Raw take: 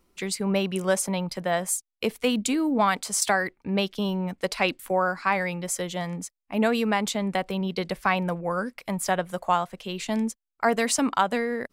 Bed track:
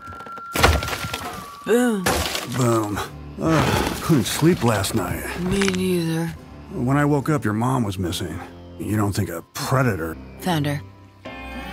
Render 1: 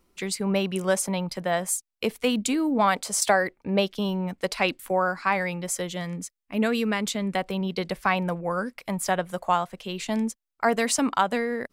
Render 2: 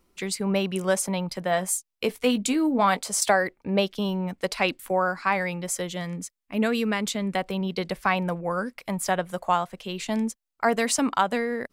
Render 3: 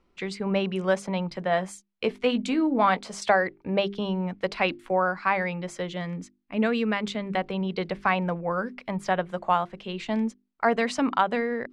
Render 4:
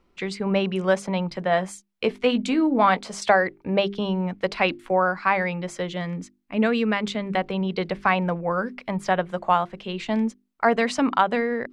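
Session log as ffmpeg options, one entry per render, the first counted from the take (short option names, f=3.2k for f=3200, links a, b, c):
-filter_complex "[0:a]asettb=1/sr,asplit=3[a][b][c];[a]atrim=end=2.844[d];[b]atrim=start=2.84:end=3.89,asetpts=PTS-STARTPTS,afade=t=in:d=0.004:c=qsin,afade=t=out:st=1.046:d=0.004:c=qsin,equalizer=f=560:t=o:w=0.77:g=6[e];[c]atrim=start=3.886[f];[d][e]acrossfade=d=0.004:c1=hsin:c2=qsin[g];[g][f]acrossfade=d=0.004:c1=qsin:c2=hsin,asettb=1/sr,asplit=3[h][i][j];[h]atrim=end=5.894[k];[i]atrim=start=5.89:end=7.36,asetpts=PTS-STARTPTS,afade=t=in:d=0.004:c=qsin,afade=t=out:st=1.466:d=0.004:c=qsin,equalizer=f=810:w=2.3:g=-9[l];[j]atrim=start=7.356[m];[k][l]acrossfade=d=0.004:c1=hsin:c2=qsin[n];[n][m]acrossfade=d=0.004:c1=qsin:c2=hsin"
-filter_complex "[0:a]asettb=1/sr,asplit=3[a][b][c];[a]atrim=end=1.494[d];[b]atrim=start=1.49:end=2.99,asetpts=PTS-STARTPTS,afade=t=in:d=0.004:c=qsin,afade=t=out:st=1.496:d=0.004:c=qsin,asplit=2[e][f];[f]adelay=16,volume=-10dB[g];[e][g]amix=inputs=2:normalize=0,atrim=end_sample=66150[h];[c]atrim=start=2.986[i];[d][h]acrossfade=d=0.004:c1=hsin:c2=qsin[j];[j][i]acrossfade=d=0.004:c1=qsin:c2=hsin"
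-af "lowpass=3.4k,bandreject=f=50:t=h:w=6,bandreject=f=100:t=h:w=6,bandreject=f=150:t=h:w=6,bandreject=f=200:t=h:w=6,bandreject=f=250:t=h:w=6,bandreject=f=300:t=h:w=6,bandreject=f=350:t=h:w=6,bandreject=f=400:t=h:w=6"
-af "volume=3dB"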